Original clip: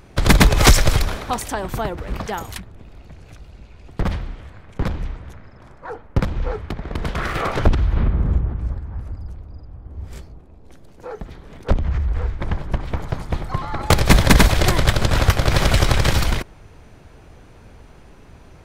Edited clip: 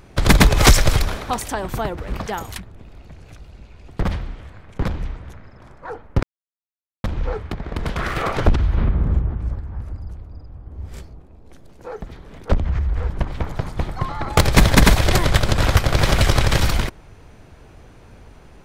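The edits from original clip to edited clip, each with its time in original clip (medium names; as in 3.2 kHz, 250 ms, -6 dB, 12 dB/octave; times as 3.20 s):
6.23 s: insert silence 0.81 s
12.29–12.63 s: delete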